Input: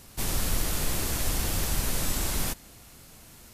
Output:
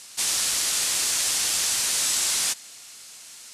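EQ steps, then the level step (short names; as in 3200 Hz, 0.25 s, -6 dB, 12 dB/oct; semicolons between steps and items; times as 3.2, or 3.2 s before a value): weighting filter ITU-R 468; 0.0 dB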